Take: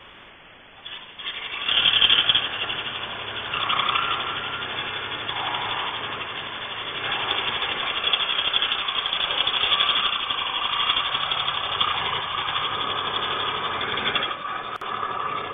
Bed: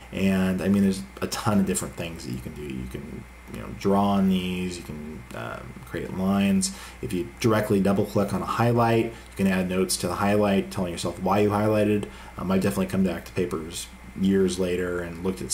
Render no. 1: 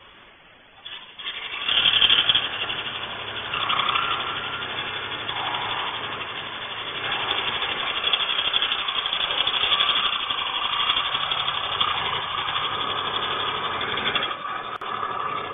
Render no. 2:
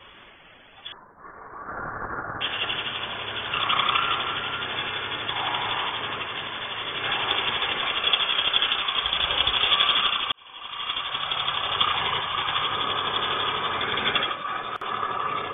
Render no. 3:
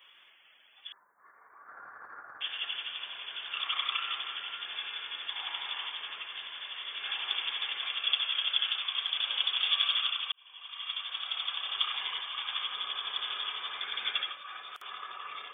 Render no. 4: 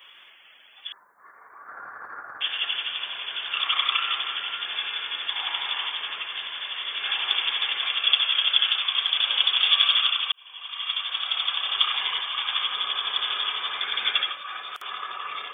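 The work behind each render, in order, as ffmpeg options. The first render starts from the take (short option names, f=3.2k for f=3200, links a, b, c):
-af "afftdn=nr=6:nf=-45"
-filter_complex "[0:a]asettb=1/sr,asplit=3[a][b][c];[a]atrim=end=0.924[d];[b]atrim=start=0.92:end=2.41,asetpts=PTS-STARTPTS,afade=t=in:d=0.004:c=qsin,afade=t=out:st=1.486:d=0.004:c=qsin,asuperstop=centerf=3100:order=8:qfactor=0.65[e];[c]atrim=start=2.406[f];[d][e]acrossfade=d=0.004:c1=hsin:c2=qsin[g];[g][f]acrossfade=d=0.004:c1=qsin:c2=hsin,asettb=1/sr,asplit=3[h][i][j];[h]atrim=end=9.024[k];[i]atrim=start=9.02:end=9.6,asetpts=PTS-STARTPTS,afade=t=in:d=0.004:c=qsin,afade=t=out:st=0.576:d=0.004:c=qsin,equalizer=f=64:t=o:w=1.1:g=14.5[l];[j]atrim=start=9.596[m];[k][l]acrossfade=d=0.004:c1=hsin:c2=qsin[n];[n][m]acrossfade=d=0.004:c1=qsin:c2=hsin,asplit=2[o][p];[o]atrim=end=10.32,asetpts=PTS-STARTPTS,afade=t=out:st=10.316:d=0.004:c=hsin[q];[p]atrim=start=10.32,asetpts=PTS-STARTPTS,afade=t=in:d=1.34[r];[q][r]concat=n=2:v=0:a=1"
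-af "aderivative"
-af "volume=8.5dB"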